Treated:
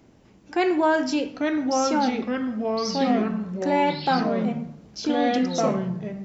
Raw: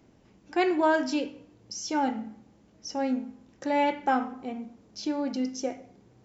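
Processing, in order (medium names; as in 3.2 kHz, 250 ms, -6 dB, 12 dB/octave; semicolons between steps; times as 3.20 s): in parallel at -3 dB: peak limiter -21.5 dBFS, peak gain reduction 8.5 dB; on the sum: ever faster or slower copies 738 ms, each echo -3 st, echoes 3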